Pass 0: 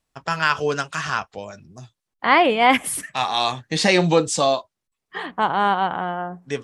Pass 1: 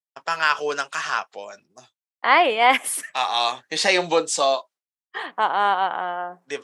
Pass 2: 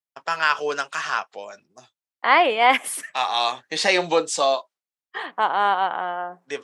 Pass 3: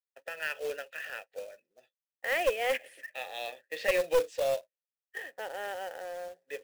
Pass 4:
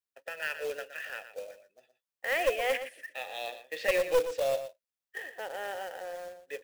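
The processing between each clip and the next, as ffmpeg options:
-af "agate=range=-33dB:threshold=-41dB:ratio=3:detection=peak,highpass=460"
-af "highshelf=f=6.9k:g=-4.5"
-filter_complex "[0:a]asplit=3[a][b][c];[a]bandpass=f=530:t=q:w=8,volume=0dB[d];[b]bandpass=f=1.84k:t=q:w=8,volume=-6dB[e];[c]bandpass=f=2.48k:t=q:w=8,volume=-9dB[f];[d][e][f]amix=inputs=3:normalize=0,acrusher=bits=3:mode=log:mix=0:aa=0.000001,aeval=exprs='clip(val(0),-1,0.0668)':c=same"
-af "aecho=1:1:118:0.282"

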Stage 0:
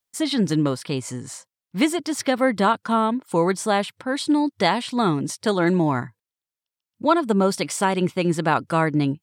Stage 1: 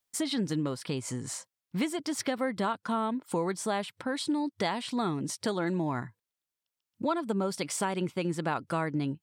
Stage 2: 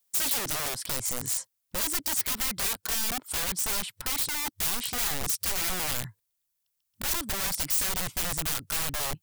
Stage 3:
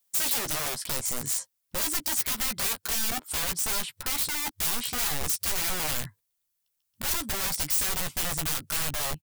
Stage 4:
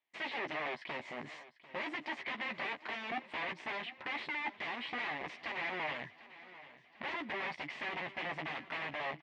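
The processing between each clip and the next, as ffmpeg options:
-af "acompressor=threshold=-32dB:ratio=2.5"
-af "aeval=exprs='(mod(31.6*val(0)+1,2)-1)/31.6':c=same,asubboost=boost=3.5:cutoff=120,crystalizer=i=2:c=0"
-filter_complex "[0:a]asplit=2[a][b];[b]adelay=13,volume=-8dB[c];[a][c]amix=inputs=2:normalize=0"
-af "asoftclip=type=tanh:threshold=-26.5dB,highpass=310,equalizer=f=480:t=q:w=4:g=-5,equalizer=f=1.4k:t=q:w=4:g=-10,equalizer=f=2k:t=q:w=4:g=6,lowpass=f=2.7k:w=0.5412,lowpass=f=2.7k:w=1.3066,aecho=1:1:745|1490|2235|2980|3725:0.133|0.0787|0.0464|0.0274|0.0162"

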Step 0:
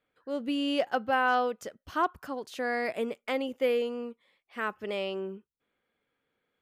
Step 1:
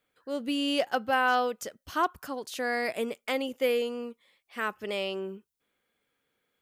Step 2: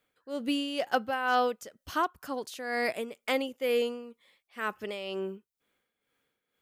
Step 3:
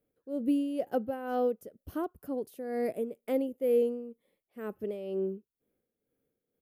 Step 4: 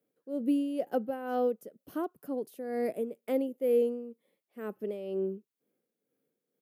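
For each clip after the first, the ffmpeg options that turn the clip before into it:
-af "highshelf=f=4k:g=10.5"
-af "tremolo=f=2.1:d=0.65,volume=1.5dB"
-af "firequalizer=gain_entry='entry(450,0);entry(970,-18);entry(3900,-23);entry(7300,-21);entry(11000,-6)':delay=0.05:min_phase=1,volume=3dB"
-af "highpass=f=150:w=0.5412,highpass=f=150:w=1.3066"

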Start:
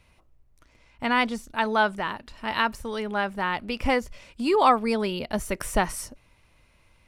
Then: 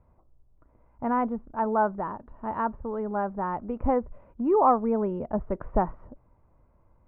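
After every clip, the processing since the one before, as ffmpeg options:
-af "lowpass=f=1.1k:w=0.5412,lowpass=f=1.1k:w=1.3066"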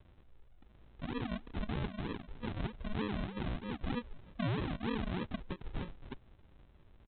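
-af "acompressor=threshold=-28dB:ratio=3,alimiter=level_in=6dB:limit=-24dB:level=0:latency=1:release=333,volume=-6dB,aresample=8000,acrusher=samples=15:mix=1:aa=0.000001:lfo=1:lforange=9:lforate=3.2,aresample=44100,volume=1dB"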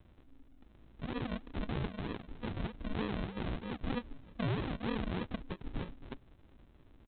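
-af "tremolo=f=270:d=0.621,volume=3dB"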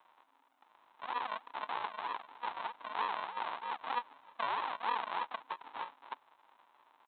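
-af "highpass=f=940:t=q:w=4.9,volume=1dB"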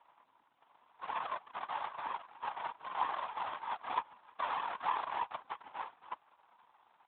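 -af "flanger=delay=2.4:depth=2.1:regen=-55:speed=1.6:shape=triangular,afftfilt=real='hypot(re,im)*cos(2*PI*random(0))':imag='hypot(re,im)*sin(2*PI*random(1))':win_size=512:overlap=0.75,volume=10.5dB" -ar 8000 -c:a libopencore_amrnb -b:a 12200

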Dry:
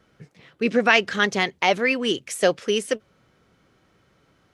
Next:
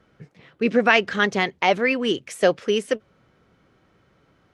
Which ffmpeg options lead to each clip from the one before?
-af "highshelf=f=4.3k:g=-9.5,volume=1.5dB"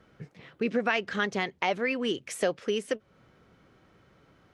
-af "acompressor=threshold=-31dB:ratio=2"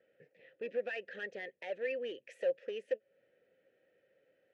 -filter_complex "[0:a]asoftclip=type=hard:threshold=-23.5dB,asplit=3[a][b][c];[a]bandpass=f=530:t=q:w=8,volume=0dB[d];[b]bandpass=f=1.84k:t=q:w=8,volume=-6dB[e];[c]bandpass=f=2.48k:t=q:w=8,volume=-9dB[f];[d][e][f]amix=inputs=3:normalize=0"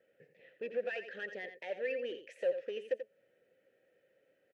-af "aecho=1:1:86:0.316"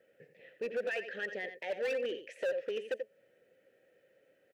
-af "asoftclip=type=hard:threshold=-33.5dB,volume=4dB"

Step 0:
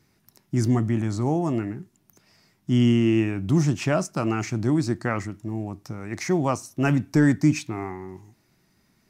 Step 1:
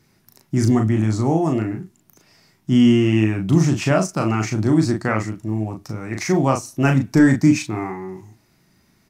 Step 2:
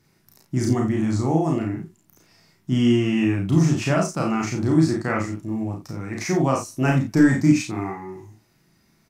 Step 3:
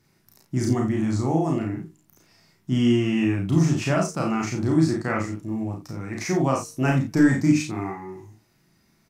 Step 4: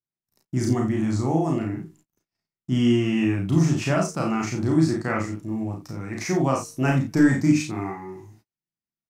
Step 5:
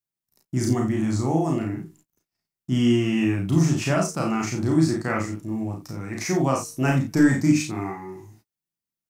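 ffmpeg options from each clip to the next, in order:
-filter_complex "[0:a]asplit=2[a][b];[b]adelay=37,volume=-4.5dB[c];[a][c]amix=inputs=2:normalize=0,volume=4dB"
-af "aecho=1:1:31|50:0.562|0.531,volume=-4.5dB"
-af "bandreject=f=153.1:t=h:w=4,bandreject=f=306.2:t=h:w=4,bandreject=f=459.3:t=h:w=4,volume=-1.5dB"
-af "agate=range=-36dB:threshold=-53dB:ratio=16:detection=peak"
-af "highshelf=f=7.5k:g=7"

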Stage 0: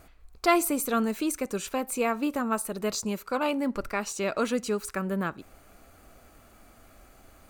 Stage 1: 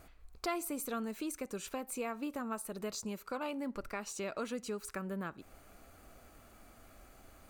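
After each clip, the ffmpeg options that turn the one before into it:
-af "acompressor=threshold=-38dB:ratio=2,volume=-3.5dB"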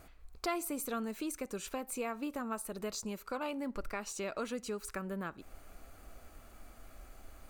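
-af "asubboost=boost=2.5:cutoff=64,volume=1dB"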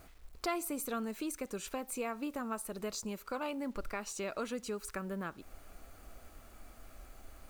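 -af "acrusher=bits=10:mix=0:aa=0.000001"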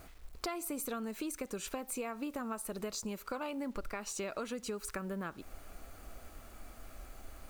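-af "acompressor=threshold=-38dB:ratio=6,volume=3dB"

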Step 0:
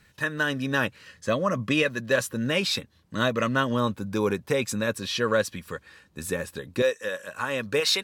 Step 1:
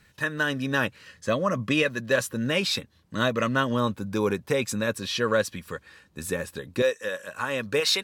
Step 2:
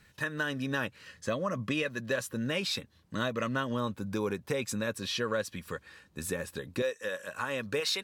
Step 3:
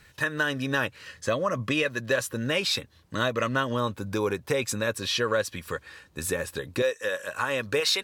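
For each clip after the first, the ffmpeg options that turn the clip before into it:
-af anull
-af "acompressor=threshold=-30dB:ratio=2,volume=-2dB"
-af "equalizer=f=200:w=1.9:g=-7,volume=6.5dB"

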